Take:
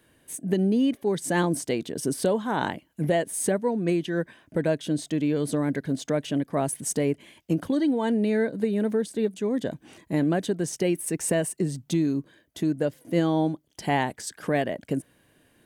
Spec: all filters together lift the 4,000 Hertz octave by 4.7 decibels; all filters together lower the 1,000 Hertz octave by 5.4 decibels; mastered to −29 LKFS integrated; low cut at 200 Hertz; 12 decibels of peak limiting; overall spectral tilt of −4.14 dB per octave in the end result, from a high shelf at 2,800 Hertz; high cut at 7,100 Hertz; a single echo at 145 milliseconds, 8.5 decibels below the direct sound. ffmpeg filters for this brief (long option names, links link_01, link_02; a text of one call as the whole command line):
ffmpeg -i in.wav -af "highpass=200,lowpass=7100,equalizer=frequency=1000:width_type=o:gain=-8.5,highshelf=frequency=2800:gain=4,equalizer=frequency=4000:width_type=o:gain=4,alimiter=limit=-23dB:level=0:latency=1,aecho=1:1:145:0.376,volume=3dB" out.wav